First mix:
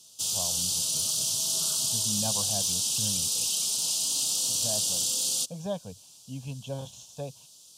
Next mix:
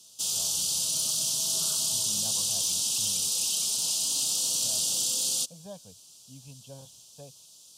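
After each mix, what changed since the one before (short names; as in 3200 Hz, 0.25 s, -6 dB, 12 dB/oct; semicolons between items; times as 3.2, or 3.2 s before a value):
speech -11.0 dB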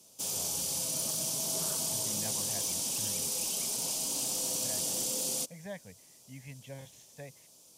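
background: add graphic EQ 250/500/1000/2000/4000/8000 Hz +4/+6/+4/-9/-8/-5 dB; master: remove Chebyshev band-stop 1300–3000 Hz, order 2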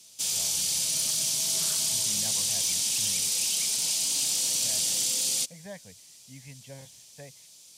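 background: add graphic EQ 250/500/1000/2000/4000/8000 Hz -4/-6/-4/+9/+8/+5 dB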